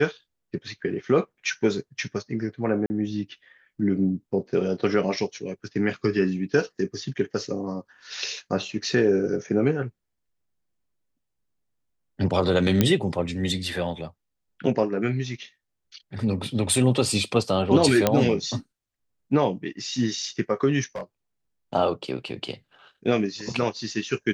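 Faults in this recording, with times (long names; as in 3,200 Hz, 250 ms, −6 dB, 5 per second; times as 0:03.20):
0:02.86–0:02.90: drop-out 40 ms
0:12.81: click −5 dBFS
0:18.07: click −4 dBFS
0:20.95–0:21.02: clipping −27.5 dBFS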